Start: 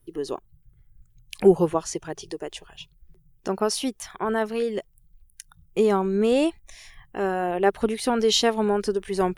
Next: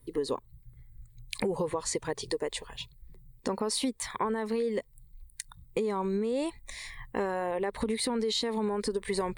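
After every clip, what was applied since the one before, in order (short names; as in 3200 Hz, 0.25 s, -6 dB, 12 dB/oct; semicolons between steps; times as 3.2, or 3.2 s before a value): ripple EQ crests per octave 0.98, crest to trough 10 dB; limiter -17.5 dBFS, peak gain reduction 12 dB; compressor, threshold -30 dBFS, peak gain reduction 9 dB; gain +3 dB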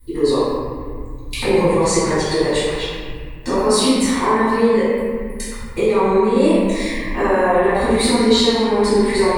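reverb RT60 2.0 s, pre-delay 3 ms, DRR -16.5 dB; gain -2.5 dB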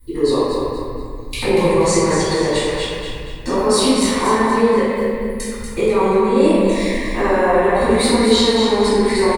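feedback echo 0.238 s, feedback 38%, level -7 dB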